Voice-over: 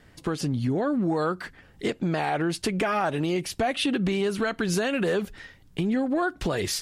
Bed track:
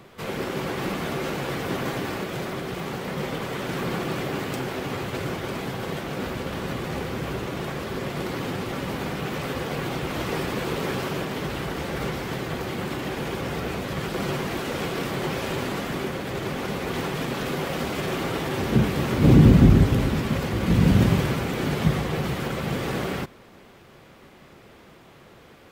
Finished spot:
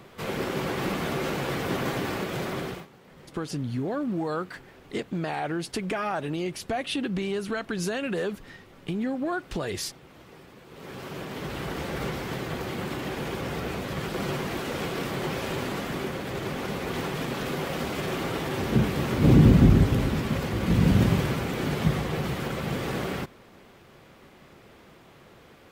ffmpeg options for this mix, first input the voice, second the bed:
ffmpeg -i stem1.wav -i stem2.wav -filter_complex "[0:a]adelay=3100,volume=-4dB[link_01];[1:a]volume=19dB,afade=type=out:start_time=2.64:duration=0.23:silence=0.0841395,afade=type=in:start_time=10.69:duration=1.04:silence=0.105925[link_02];[link_01][link_02]amix=inputs=2:normalize=0" out.wav

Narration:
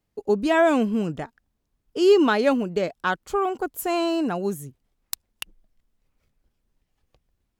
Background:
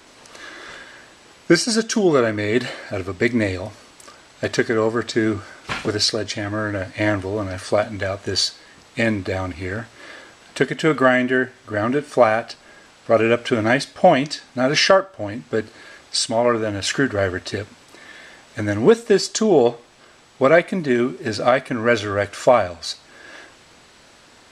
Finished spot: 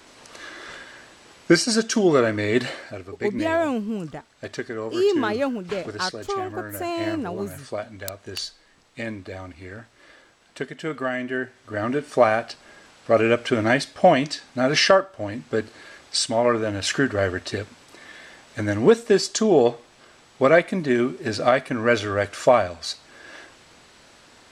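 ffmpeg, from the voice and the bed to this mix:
ffmpeg -i stem1.wav -i stem2.wav -filter_complex "[0:a]adelay=2950,volume=-4dB[link_01];[1:a]volume=8dB,afade=type=out:start_time=2.74:duration=0.25:silence=0.316228,afade=type=in:start_time=11.07:duration=1.26:silence=0.334965[link_02];[link_01][link_02]amix=inputs=2:normalize=0" out.wav

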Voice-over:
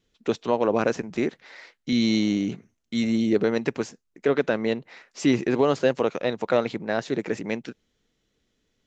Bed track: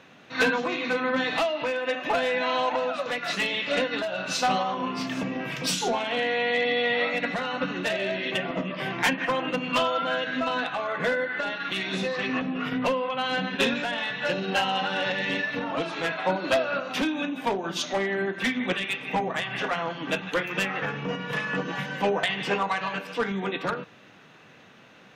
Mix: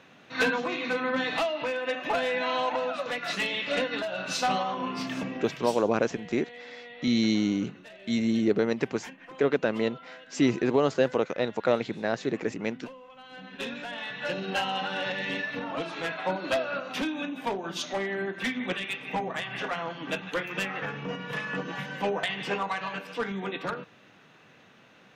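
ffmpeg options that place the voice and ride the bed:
ffmpeg -i stem1.wav -i stem2.wav -filter_complex "[0:a]adelay=5150,volume=-2.5dB[link_01];[1:a]volume=14.5dB,afade=type=out:start_time=5.17:duration=0.65:silence=0.11885,afade=type=in:start_time=13.29:duration=1.09:silence=0.141254[link_02];[link_01][link_02]amix=inputs=2:normalize=0" out.wav

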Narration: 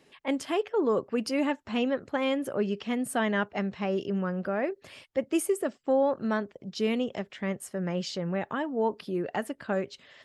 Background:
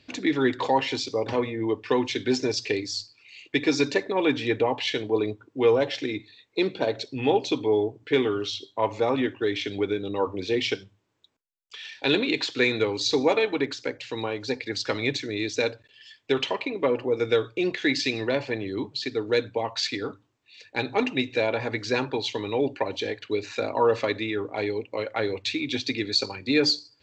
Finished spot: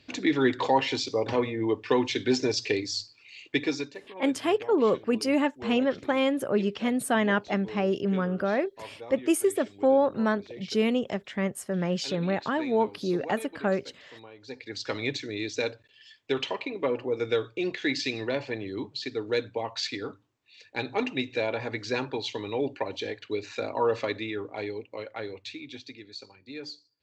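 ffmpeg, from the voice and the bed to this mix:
ffmpeg -i stem1.wav -i stem2.wav -filter_complex "[0:a]adelay=3950,volume=3dB[link_01];[1:a]volume=14dB,afade=type=out:start_time=3.48:duration=0.43:silence=0.125893,afade=type=in:start_time=14.37:duration=0.58:silence=0.188365,afade=type=out:start_time=24.14:duration=1.9:silence=0.188365[link_02];[link_01][link_02]amix=inputs=2:normalize=0" out.wav

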